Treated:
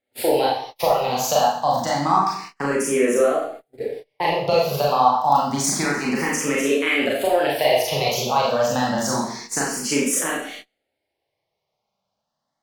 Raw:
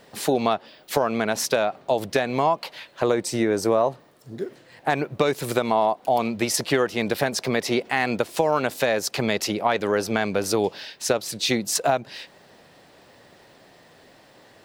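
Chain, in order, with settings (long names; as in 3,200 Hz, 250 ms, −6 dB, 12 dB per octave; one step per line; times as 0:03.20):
low-shelf EQ 72 Hz +5 dB
four-comb reverb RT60 0.71 s, combs from 33 ms, DRR −4.5 dB
noise gate −32 dBFS, range −30 dB
speed change +16%
frequency shifter mixed with the dry sound +0.28 Hz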